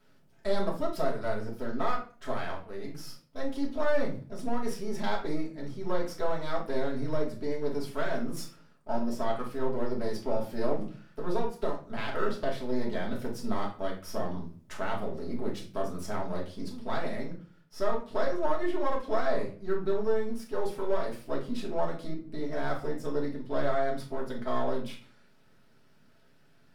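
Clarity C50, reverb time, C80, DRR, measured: 8.5 dB, 0.40 s, 14.0 dB, -3.0 dB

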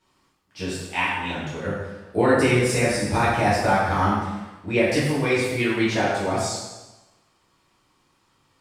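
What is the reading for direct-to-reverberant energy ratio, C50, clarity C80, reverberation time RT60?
-10.5 dB, 0.0 dB, 2.5 dB, 1.1 s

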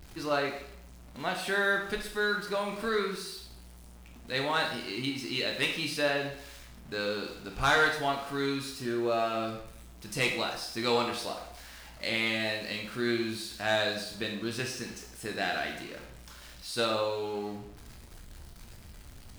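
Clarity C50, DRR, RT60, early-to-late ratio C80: 6.0 dB, 1.5 dB, 0.70 s, 9.0 dB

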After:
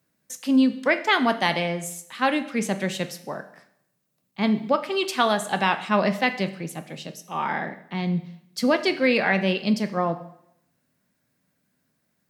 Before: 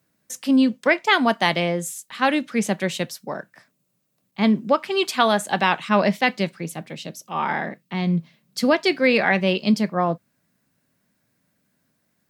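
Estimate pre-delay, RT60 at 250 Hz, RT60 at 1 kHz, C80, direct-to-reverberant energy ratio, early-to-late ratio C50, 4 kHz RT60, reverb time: 5 ms, 0.75 s, 0.80 s, 16.5 dB, 9.5 dB, 13.5 dB, 0.70 s, 0.75 s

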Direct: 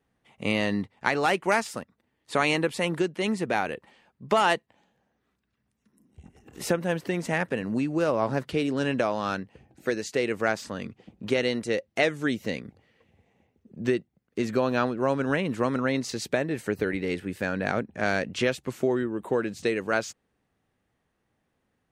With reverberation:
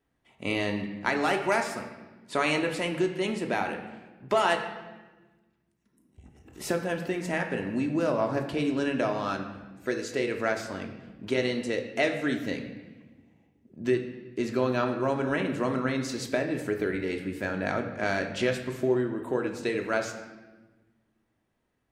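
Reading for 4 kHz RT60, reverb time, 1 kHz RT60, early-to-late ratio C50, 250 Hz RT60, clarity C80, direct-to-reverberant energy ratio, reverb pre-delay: 0.95 s, 1.3 s, 1.1 s, 7.5 dB, 1.8 s, 9.5 dB, 3.0 dB, 3 ms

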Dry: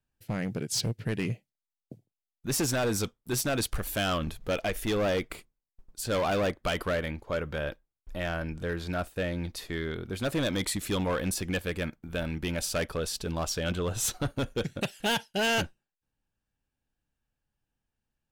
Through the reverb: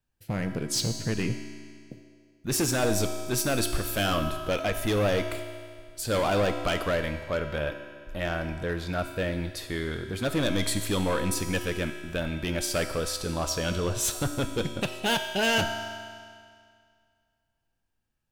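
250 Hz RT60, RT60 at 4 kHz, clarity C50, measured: 2.1 s, 2.0 s, 6.5 dB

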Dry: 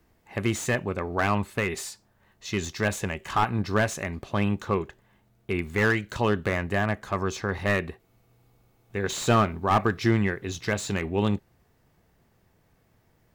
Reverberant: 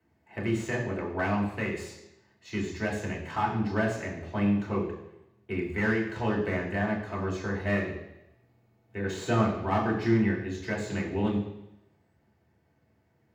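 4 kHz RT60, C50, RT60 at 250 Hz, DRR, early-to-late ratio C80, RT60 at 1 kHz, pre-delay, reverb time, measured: 0.90 s, 6.0 dB, 0.85 s, -3.0 dB, 8.5 dB, 0.90 s, 3 ms, 0.90 s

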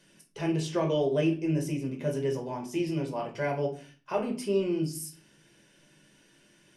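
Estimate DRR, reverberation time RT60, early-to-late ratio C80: 0.5 dB, 0.40 s, 16.0 dB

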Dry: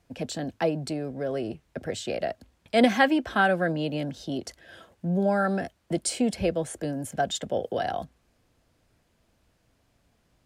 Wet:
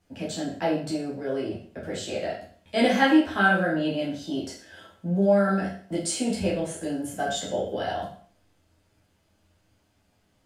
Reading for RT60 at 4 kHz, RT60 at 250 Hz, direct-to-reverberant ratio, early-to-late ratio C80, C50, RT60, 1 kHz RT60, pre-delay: 0.50 s, 0.50 s, -6.0 dB, 9.5 dB, 5.5 dB, 0.50 s, 0.50 s, 10 ms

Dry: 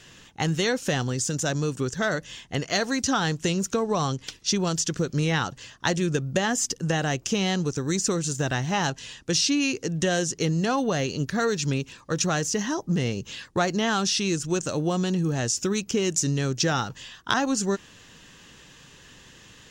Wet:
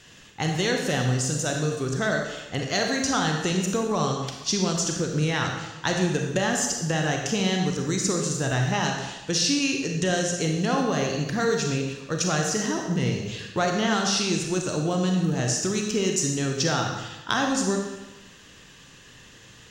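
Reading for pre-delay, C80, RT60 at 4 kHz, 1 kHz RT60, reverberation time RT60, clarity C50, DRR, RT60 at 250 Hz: 31 ms, 5.5 dB, 0.95 s, 1.1 s, 1.1 s, 3.5 dB, 1.5 dB, 1.1 s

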